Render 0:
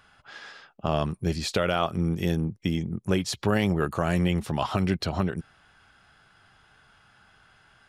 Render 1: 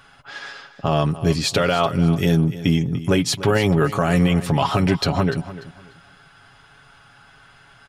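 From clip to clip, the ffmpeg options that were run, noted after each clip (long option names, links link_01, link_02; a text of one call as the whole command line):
ffmpeg -i in.wav -af "aecho=1:1:7.2:0.53,alimiter=limit=-14dB:level=0:latency=1:release=31,aecho=1:1:294|588|882:0.178|0.0445|0.0111,volume=7.5dB" out.wav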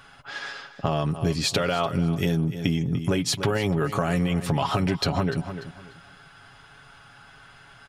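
ffmpeg -i in.wav -af "acompressor=threshold=-20dB:ratio=6" out.wav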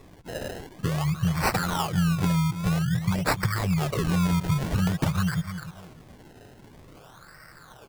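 ffmpeg -i in.wav -af "afftfilt=real='re*(1-between(b*sr/4096,200,1000))':imag='im*(1-between(b*sr/4096,200,1000))':win_size=4096:overlap=0.75,equalizer=frequency=8700:width=2.1:gain=4.5,acrusher=samples=26:mix=1:aa=0.000001:lfo=1:lforange=26:lforate=0.5,volume=1.5dB" out.wav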